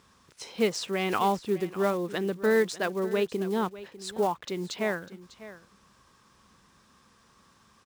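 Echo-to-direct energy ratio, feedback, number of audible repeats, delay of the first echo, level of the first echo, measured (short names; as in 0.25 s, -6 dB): -16.0 dB, no steady repeat, 1, 0.599 s, -16.0 dB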